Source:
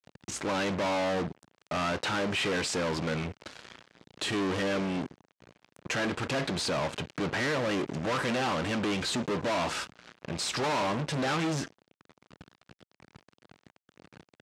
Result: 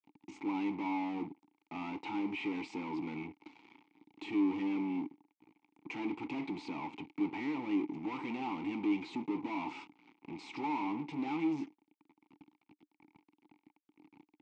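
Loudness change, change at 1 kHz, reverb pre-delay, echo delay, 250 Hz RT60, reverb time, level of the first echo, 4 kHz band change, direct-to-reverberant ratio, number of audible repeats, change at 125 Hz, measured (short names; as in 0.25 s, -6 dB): -7.0 dB, -8.0 dB, none, none, none, none, none, -18.5 dB, none, none, -15.5 dB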